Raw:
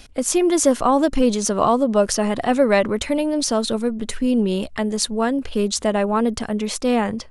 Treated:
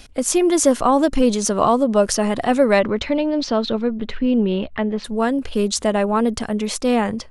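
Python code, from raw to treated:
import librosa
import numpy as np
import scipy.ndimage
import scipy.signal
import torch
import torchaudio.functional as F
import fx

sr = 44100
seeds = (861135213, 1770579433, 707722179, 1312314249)

y = fx.lowpass(x, sr, hz=fx.line((2.79, 5400.0), (5.04, 3000.0)), slope=24, at=(2.79, 5.04), fade=0.02)
y = y * librosa.db_to_amplitude(1.0)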